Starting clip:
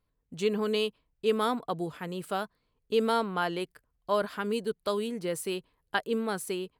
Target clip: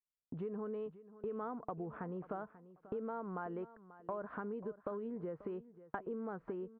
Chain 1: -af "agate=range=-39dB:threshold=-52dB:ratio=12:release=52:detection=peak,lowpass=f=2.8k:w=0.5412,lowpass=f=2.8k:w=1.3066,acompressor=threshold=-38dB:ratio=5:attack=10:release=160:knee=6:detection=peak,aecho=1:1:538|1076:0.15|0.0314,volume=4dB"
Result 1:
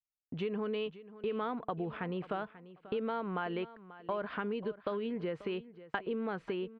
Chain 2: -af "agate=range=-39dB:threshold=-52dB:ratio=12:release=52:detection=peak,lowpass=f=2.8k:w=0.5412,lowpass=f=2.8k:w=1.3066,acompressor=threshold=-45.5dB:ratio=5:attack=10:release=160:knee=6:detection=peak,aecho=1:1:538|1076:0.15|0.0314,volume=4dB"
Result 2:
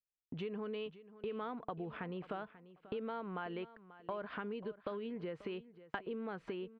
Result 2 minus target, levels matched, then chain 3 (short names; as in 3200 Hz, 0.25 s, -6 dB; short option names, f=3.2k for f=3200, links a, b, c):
2000 Hz band +5.0 dB
-af "agate=range=-39dB:threshold=-52dB:ratio=12:release=52:detection=peak,lowpass=f=1.4k:w=0.5412,lowpass=f=1.4k:w=1.3066,acompressor=threshold=-45.5dB:ratio=5:attack=10:release=160:knee=6:detection=peak,aecho=1:1:538|1076:0.15|0.0314,volume=4dB"